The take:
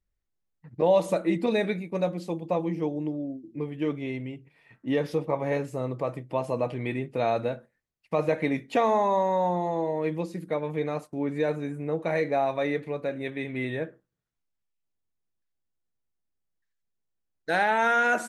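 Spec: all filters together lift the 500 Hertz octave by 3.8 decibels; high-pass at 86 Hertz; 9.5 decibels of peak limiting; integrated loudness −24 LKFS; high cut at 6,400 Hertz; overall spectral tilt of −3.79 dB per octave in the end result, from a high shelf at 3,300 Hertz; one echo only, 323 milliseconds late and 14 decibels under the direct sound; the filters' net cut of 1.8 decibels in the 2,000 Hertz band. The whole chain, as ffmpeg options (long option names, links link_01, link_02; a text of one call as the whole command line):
ffmpeg -i in.wav -af "highpass=86,lowpass=6400,equalizer=frequency=500:width_type=o:gain=4.5,equalizer=frequency=2000:width_type=o:gain=-5,highshelf=frequency=3300:gain=7,alimiter=limit=-18dB:level=0:latency=1,aecho=1:1:323:0.2,volume=4.5dB" out.wav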